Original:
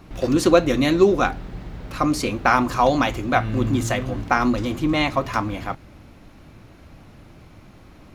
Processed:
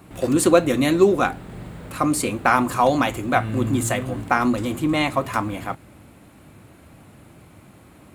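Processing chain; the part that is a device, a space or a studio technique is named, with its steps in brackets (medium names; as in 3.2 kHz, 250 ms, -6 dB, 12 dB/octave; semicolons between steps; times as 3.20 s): 1.45–1.89 s: doubling 43 ms -4.5 dB; budget condenser microphone (high-pass 82 Hz 12 dB/octave; resonant high shelf 6.9 kHz +6 dB, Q 3)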